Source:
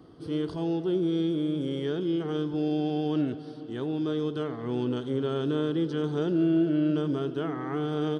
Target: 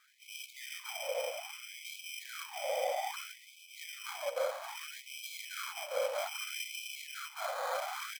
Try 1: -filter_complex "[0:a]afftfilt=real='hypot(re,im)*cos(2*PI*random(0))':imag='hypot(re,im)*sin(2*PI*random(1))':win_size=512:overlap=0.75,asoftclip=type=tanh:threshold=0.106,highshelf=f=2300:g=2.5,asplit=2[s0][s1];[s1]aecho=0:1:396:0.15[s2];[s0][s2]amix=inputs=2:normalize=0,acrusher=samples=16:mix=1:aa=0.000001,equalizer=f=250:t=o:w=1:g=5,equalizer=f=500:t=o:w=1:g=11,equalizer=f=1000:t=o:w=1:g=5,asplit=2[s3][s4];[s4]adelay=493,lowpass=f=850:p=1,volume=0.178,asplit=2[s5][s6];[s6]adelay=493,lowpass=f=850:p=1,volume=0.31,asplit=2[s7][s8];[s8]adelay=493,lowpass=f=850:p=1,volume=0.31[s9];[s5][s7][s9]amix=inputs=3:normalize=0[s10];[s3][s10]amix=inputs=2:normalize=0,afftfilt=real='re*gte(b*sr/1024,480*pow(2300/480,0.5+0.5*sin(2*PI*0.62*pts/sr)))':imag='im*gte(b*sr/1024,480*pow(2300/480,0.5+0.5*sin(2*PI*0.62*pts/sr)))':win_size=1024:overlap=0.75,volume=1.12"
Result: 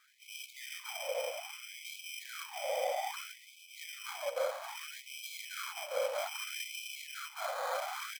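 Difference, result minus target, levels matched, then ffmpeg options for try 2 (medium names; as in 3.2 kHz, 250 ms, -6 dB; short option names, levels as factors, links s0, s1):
saturation: distortion +14 dB
-filter_complex "[0:a]afftfilt=real='hypot(re,im)*cos(2*PI*random(0))':imag='hypot(re,im)*sin(2*PI*random(1))':win_size=512:overlap=0.75,asoftclip=type=tanh:threshold=0.251,highshelf=f=2300:g=2.5,asplit=2[s0][s1];[s1]aecho=0:1:396:0.15[s2];[s0][s2]amix=inputs=2:normalize=0,acrusher=samples=16:mix=1:aa=0.000001,equalizer=f=250:t=o:w=1:g=5,equalizer=f=500:t=o:w=1:g=11,equalizer=f=1000:t=o:w=1:g=5,asplit=2[s3][s4];[s4]adelay=493,lowpass=f=850:p=1,volume=0.178,asplit=2[s5][s6];[s6]adelay=493,lowpass=f=850:p=1,volume=0.31,asplit=2[s7][s8];[s8]adelay=493,lowpass=f=850:p=1,volume=0.31[s9];[s5][s7][s9]amix=inputs=3:normalize=0[s10];[s3][s10]amix=inputs=2:normalize=0,afftfilt=real='re*gte(b*sr/1024,480*pow(2300/480,0.5+0.5*sin(2*PI*0.62*pts/sr)))':imag='im*gte(b*sr/1024,480*pow(2300/480,0.5+0.5*sin(2*PI*0.62*pts/sr)))':win_size=1024:overlap=0.75,volume=1.12"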